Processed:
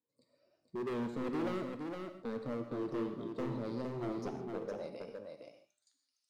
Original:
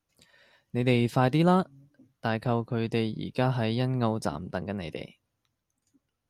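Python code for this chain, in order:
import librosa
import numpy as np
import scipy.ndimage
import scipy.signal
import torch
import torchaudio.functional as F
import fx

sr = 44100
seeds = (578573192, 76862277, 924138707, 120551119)

y = fx.spec_ripple(x, sr, per_octave=1.0, drift_hz=0.87, depth_db=14)
y = fx.high_shelf_res(y, sr, hz=3600.0, db=11.5, q=1.5)
y = fx.filter_sweep_bandpass(y, sr, from_hz=370.0, to_hz=3700.0, start_s=4.5, end_s=5.92, q=1.9)
y = np.clip(y, -10.0 ** (-31.0 / 20.0), 10.0 ** (-31.0 / 20.0))
y = fx.comb_fb(y, sr, f0_hz=120.0, decay_s=0.54, harmonics='all', damping=0.0, mix_pct=40)
y = y + 10.0 ** (-5.0 / 20.0) * np.pad(y, (int(462 * sr / 1000.0), 0))[:len(y)]
y = fx.rev_gated(y, sr, seeds[0], gate_ms=180, shape='flat', drr_db=6.5)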